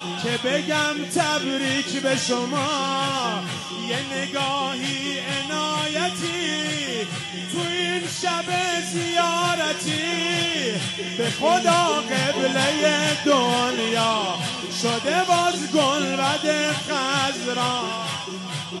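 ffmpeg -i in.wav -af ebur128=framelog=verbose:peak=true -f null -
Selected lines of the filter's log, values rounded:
Integrated loudness:
  I:         -22.3 LUFS
  Threshold: -32.3 LUFS
Loudness range:
  LRA:         4.0 LU
  Threshold: -42.1 LUFS
  LRA low:   -24.3 LUFS
  LRA high:  -20.2 LUFS
True peak:
  Peak:       -6.2 dBFS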